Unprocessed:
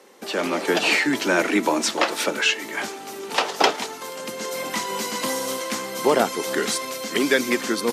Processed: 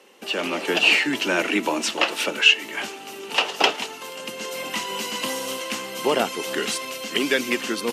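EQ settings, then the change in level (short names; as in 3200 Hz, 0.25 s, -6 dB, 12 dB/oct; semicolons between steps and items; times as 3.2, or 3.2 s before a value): bell 2800 Hz +12.5 dB 0.32 oct; -3.0 dB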